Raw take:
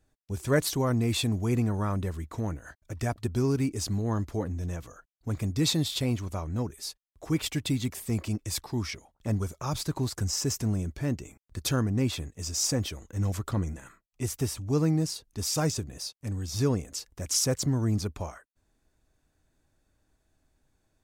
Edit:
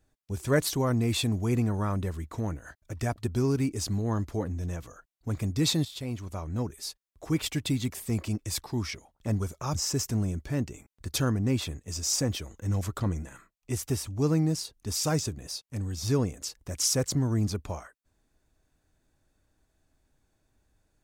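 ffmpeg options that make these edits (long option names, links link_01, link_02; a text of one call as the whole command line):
ffmpeg -i in.wav -filter_complex "[0:a]asplit=3[link_01][link_02][link_03];[link_01]atrim=end=5.85,asetpts=PTS-STARTPTS,afade=type=out:start_time=5.846:duration=0.004:curve=hsin:silence=0.251189[link_04];[link_02]atrim=start=5.85:end=9.752,asetpts=PTS-STARTPTS,afade=type=in:duration=0.78:silence=0.251189[link_05];[link_03]atrim=start=10.258[link_06];[link_04][link_05]concat=n=2:v=0:a=1[link_07];[link_07][link_06]acrossfade=duration=0.004:curve1=hsin:curve2=hsin" out.wav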